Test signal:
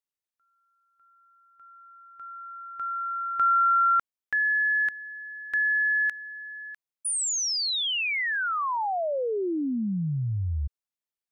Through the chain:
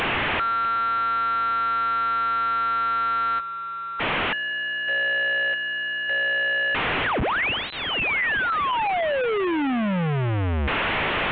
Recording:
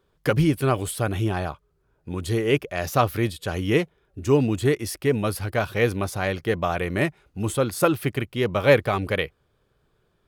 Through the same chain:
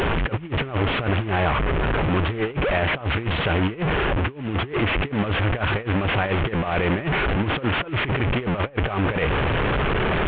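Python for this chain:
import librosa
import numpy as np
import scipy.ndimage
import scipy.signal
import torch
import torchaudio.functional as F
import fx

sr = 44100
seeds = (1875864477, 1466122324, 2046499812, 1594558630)

y = fx.delta_mod(x, sr, bps=16000, step_db=-22.0)
y = fx.over_compress(y, sr, threshold_db=-26.0, ratio=-0.5)
y = y * 10.0 ** (4.0 / 20.0)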